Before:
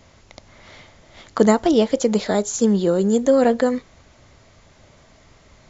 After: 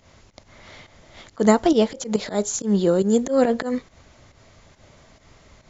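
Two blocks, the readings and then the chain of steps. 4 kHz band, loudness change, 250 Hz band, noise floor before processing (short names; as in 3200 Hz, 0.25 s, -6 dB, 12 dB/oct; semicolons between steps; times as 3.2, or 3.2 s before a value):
-1.5 dB, -2.5 dB, -2.0 dB, -52 dBFS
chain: pump 139 bpm, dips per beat 1, -11 dB, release 0.122 s; auto swell 0.116 s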